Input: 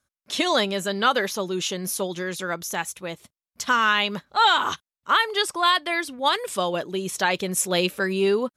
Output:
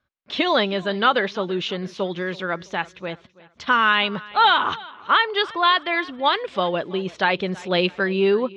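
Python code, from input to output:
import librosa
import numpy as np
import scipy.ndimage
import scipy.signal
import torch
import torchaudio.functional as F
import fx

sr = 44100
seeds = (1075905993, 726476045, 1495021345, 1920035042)

p1 = scipy.signal.sosfilt(scipy.signal.butter(4, 3800.0, 'lowpass', fs=sr, output='sos'), x)
p2 = p1 + fx.echo_feedback(p1, sr, ms=329, feedback_pct=38, wet_db=-21, dry=0)
y = p2 * 10.0 ** (2.5 / 20.0)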